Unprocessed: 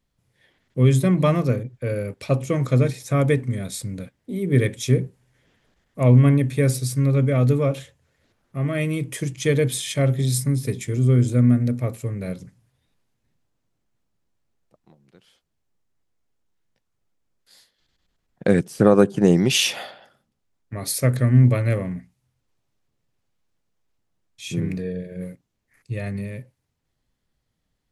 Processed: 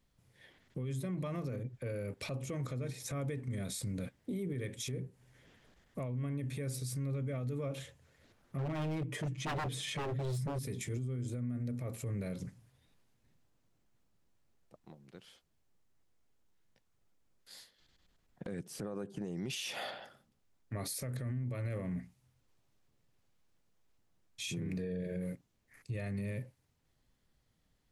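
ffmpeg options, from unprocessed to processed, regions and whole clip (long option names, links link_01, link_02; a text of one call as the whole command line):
ffmpeg -i in.wav -filter_complex "[0:a]asettb=1/sr,asplit=3[link_01][link_02][link_03];[link_01]atrim=end=8.574[link_04];[link_02]atrim=start=8.57:end=10.59,asetpts=PTS-STARTPTS,afade=type=in:duration=0.004:curve=qsin,afade=type=out:start_time=2.016:duration=0.004:curve=qsin,lowpass=frequency=1700:poles=1,aecho=1:1:6.8:0.74,atrim=end_sample=89082,aeval=exprs='0.133*(abs(mod(val(0)/0.133+3,4)-2)-1)':channel_layout=same[link_05];[link_03]atrim=start=10.586[link_06];[link_04][link_05]acrossfade=duration=0.004:curve1=hsin:curve2=qsin[link_07];[link_07][link_06]acrossfade=duration=0.004:curve1=qsin:curve2=hsin,acompressor=threshold=-30dB:ratio=10,alimiter=level_in=7dB:limit=-24dB:level=0:latency=1:release=33,volume=-7dB" out.wav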